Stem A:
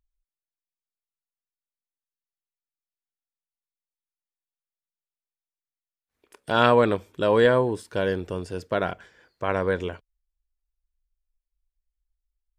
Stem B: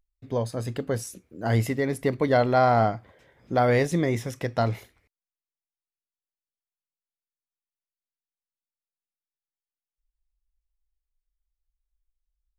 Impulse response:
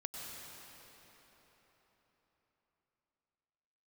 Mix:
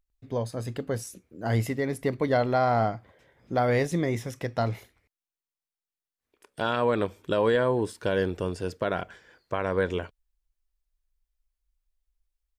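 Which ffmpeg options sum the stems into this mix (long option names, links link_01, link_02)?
-filter_complex "[0:a]adelay=100,volume=1dB[link_01];[1:a]volume=-2.5dB,asplit=2[link_02][link_03];[link_03]apad=whole_len=559538[link_04];[link_01][link_04]sidechaincompress=threshold=-48dB:ratio=3:attack=16:release=1410[link_05];[link_05][link_02]amix=inputs=2:normalize=0,alimiter=limit=-13.5dB:level=0:latency=1:release=157"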